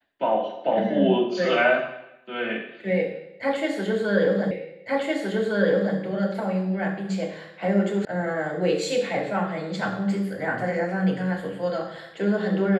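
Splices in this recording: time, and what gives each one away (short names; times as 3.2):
4.51 repeat of the last 1.46 s
8.05 sound cut off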